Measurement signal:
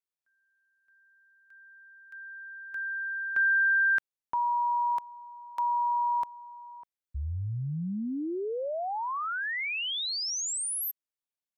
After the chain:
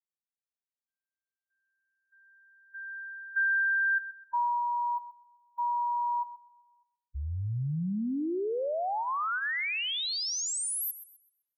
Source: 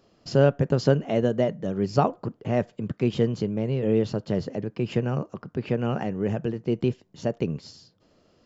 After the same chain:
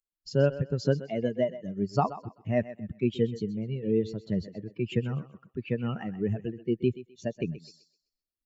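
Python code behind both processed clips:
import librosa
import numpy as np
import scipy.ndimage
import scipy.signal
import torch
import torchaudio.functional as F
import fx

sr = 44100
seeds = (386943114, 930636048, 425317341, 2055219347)

y = fx.bin_expand(x, sr, power=2.0)
y = fx.rider(y, sr, range_db=3, speed_s=0.5)
y = fx.echo_thinned(y, sr, ms=128, feedback_pct=29, hz=330.0, wet_db=-13.5)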